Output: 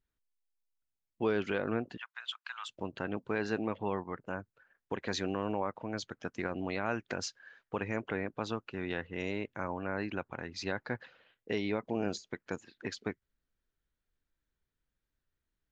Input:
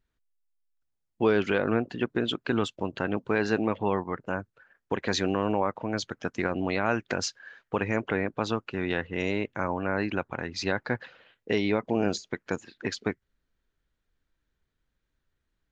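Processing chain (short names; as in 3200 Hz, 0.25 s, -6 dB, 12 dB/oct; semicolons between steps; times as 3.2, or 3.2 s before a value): 1.97–2.69 steep high-pass 970 Hz 36 dB/oct; gain -7.5 dB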